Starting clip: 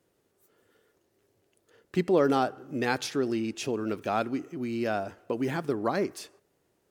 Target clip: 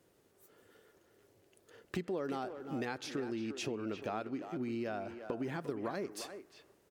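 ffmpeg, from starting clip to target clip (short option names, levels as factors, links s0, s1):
-filter_complex "[0:a]asettb=1/sr,asplit=3[s0][s1][s2];[s0]atrim=end=2.854[s3];[s1]atrim=start=2.85:end=5.61,asetpts=PTS-STARTPTS,afade=t=in:d=0.004:c=qsin,afade=t=out:st=2.756:d=0.004:c=qsin,highshelf=f=6300:g=-8.5[s4];[s2]atrim=start=5.606[s5];[s3][s4]acrossfade=d=0.004:c1=hsin:c2=qsin[s6];[s6][s5]acrossfade=d=0.004:c1=qsin:c2=hsin,acompressor=threshold=0.0112:ratio=5,asplit=2[s7][s8];[s8]adelay=350,highpass=300,lowpass=3400,asoftclip=type=hard:threshold=0.0168,volume=0.398[s9];[s7][s9]amix=inputs=2:normalize=0,volume=1.33"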